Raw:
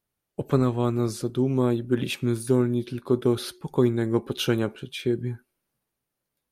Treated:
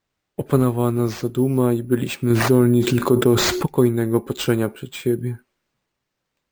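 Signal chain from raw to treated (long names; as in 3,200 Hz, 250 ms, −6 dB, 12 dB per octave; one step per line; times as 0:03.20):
dynamic equaliser 3,500 Hz, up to −4 dB, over −45 dBFS, Q 1.2
decimation without filtering 4×
0:02.30–0:03.66: envelope flattener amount 70%
level +4.5 dB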